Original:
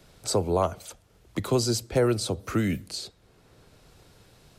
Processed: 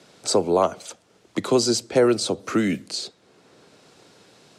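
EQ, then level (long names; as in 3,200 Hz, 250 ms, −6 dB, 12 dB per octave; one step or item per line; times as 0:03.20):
Chebyshev band-pass filter 240–7,400 Hz, order 2
+6.0 dB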